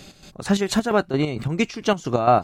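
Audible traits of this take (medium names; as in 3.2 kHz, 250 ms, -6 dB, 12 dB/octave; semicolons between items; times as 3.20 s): chopped level 4.4 Hz, depth 60%, duty 50%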